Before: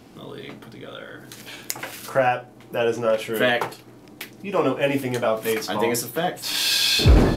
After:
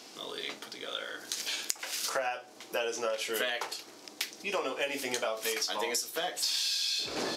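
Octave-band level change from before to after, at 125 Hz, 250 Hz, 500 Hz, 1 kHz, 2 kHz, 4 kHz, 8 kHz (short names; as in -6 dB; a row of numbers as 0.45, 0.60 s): under -30 dB, -18.0 dB, -12.5 dB, -11.0 dB, -8.5 dB, -7.0 dB, -3.5 dB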